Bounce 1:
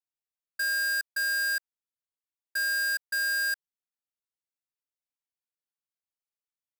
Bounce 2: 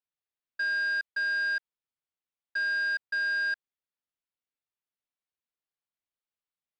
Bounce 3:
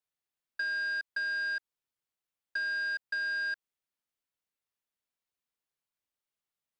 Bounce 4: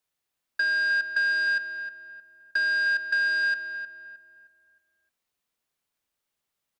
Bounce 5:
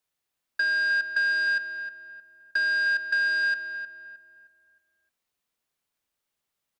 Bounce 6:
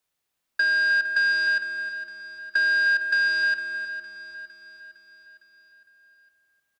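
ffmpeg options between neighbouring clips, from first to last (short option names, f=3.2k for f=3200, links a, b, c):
-af "lowpass=f=4.2k:w=0.5412,lowpass=f=4.2k:w=1.3066"
-filter_complex "[0:a]acrossover=split=860|3400[a][b][c];[a]acompressor=threshold=-53dB:ratio=4[d];[b]acompressor=threshold=-35dB:ratio=4[e];[c]acompressor=threshold=-48dB:ratio=4[f];[d][e][f]amix=inputs=3:normalize=0,volume=1.5dB"
-filter_complex "[0:a]asplit=2[a][b];[b]adelay=310,lowpass=f=1.9k:p=1,volume=-7.5dB,asplit=2[c][d];[d]adelay=310,lowpass=f=1.9k:p=1,volume=0.41,asplit=2[e][f];[f]adelay=310,lowpass=f=1.9k:p=1,volume=0.41,asplit=2[g][h];[h]adelay=310,lowpass=f=1.9k:p=1,volume=0.41,asplit=2[i][j];[j]adelay=310,lowpass=f=1.9k:p=1,volume=0.41[k];[a][c][e][g][i][k]amix=inputs=6:normalize=0,volume=8dB"
-af anull
-af "aecho=1:1:458|916|1374|1832|2290|2748:0.211|0.116|0.0639|0.0352|0.0193|0.0106,volume=3dB"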